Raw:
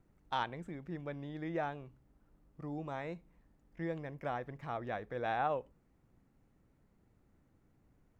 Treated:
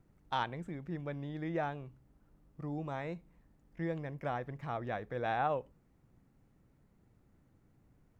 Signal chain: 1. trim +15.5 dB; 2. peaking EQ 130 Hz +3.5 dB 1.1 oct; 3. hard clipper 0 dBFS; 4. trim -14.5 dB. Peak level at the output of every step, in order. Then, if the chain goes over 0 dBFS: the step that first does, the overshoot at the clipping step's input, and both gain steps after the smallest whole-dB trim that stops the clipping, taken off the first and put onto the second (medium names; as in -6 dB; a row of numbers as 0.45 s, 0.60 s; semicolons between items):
-6.0 dBFS, -6.0 dBFS, -6.0 dBFS, -20.5 dBFS; nothing clips